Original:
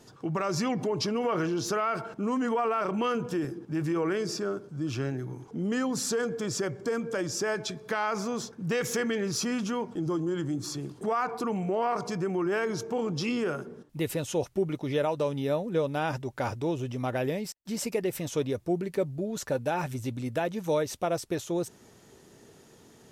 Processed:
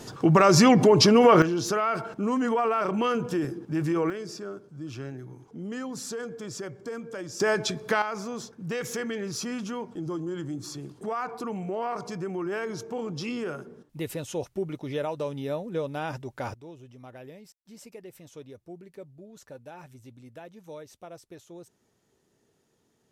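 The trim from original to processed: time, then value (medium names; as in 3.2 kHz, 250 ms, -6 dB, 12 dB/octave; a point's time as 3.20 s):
+12 dB
from 1.42 s +2.5 dB
from 4.10 s -6 dB
from 7.40 s +5.5 dB
from 8.02 s -3 dB
from 16.54 s -15.5 dB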